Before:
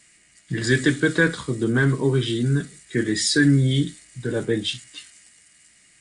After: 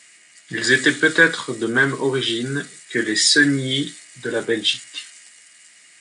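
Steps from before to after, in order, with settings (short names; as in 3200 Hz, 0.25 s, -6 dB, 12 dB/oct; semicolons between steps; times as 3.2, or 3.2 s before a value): weighting filter A; gain +6.5 dB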